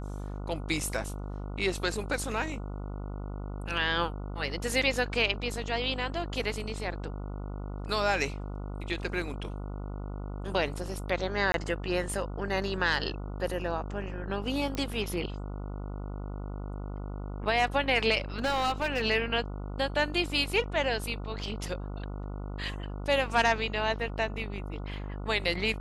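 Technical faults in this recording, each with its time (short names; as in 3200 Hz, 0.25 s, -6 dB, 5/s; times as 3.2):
buzz 50 Hz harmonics 29 -37 dBFS
11.52–11.54 gap 22 ms
14.75 pop -19 dBFS
18.39–19.03 clipped -24 dBFS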